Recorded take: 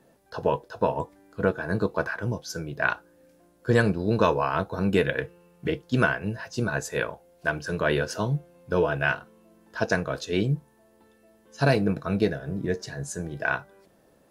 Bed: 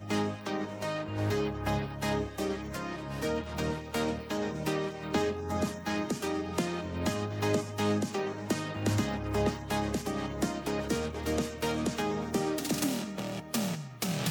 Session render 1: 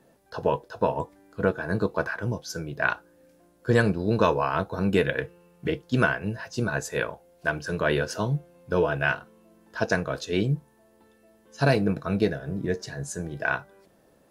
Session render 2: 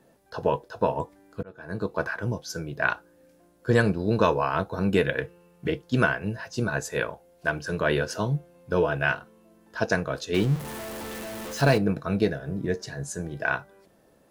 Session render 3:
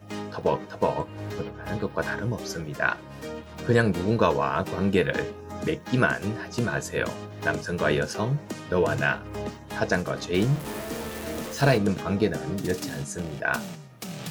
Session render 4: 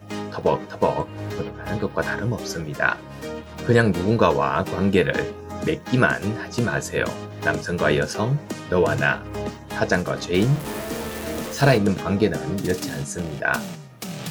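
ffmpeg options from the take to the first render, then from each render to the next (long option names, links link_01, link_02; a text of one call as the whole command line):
ffmpeg -i in.wav -af anull out.wav
ffmpeg -i in.wav -filter_complex "[0:a]asettb=1/sr,asplit=3[link_01][link_02][link_03];[link_01]atrim=end=10.344[link_04];[link_02]atrim=start=10.34:end=11.78,asetpts=PTS-STARTPTS,afade=type=in:duration=0.004:curve=qsin,afade=type=out:start_time=1.436:duration=0.004:curve=qsin,aeval=exprs='val(0)+0.5*0.0299*sgn(val(0))':channel_layout=same[link_05];[link_03]atrim=start=11.776[link_06];[link_04][link_05]acrossfade=duration=0.004:curve1=hsin:curve2=qsin[link_07];[link_07][link_06]acrossfade=duration=0.004:curve1=qsin:curve2=hsin,asplit=2[link_08][link_09];[link_08]atrim=end=1.43,asetpts=PTS-STARTPTS,afade=type=out:start_time=1.426:duration=0.004:curve=hsin[link_10];[link_09]atrim=start=1.43,asetpts=PTS-STARTPTS,afade=type=in:duration=0.64[link_11];[link_10][link_11]concat=n=2:v=0:a=1" out.wav
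ffmpeg -i in.wav -i bed.wav -filter_complex "[1:a]volume=-4.5dB[link_01];[0:a][link_01]amix=inputs=2:normalize=0" out.wav
ffmpeg -i in.wav -af "volume=4dB" out.wav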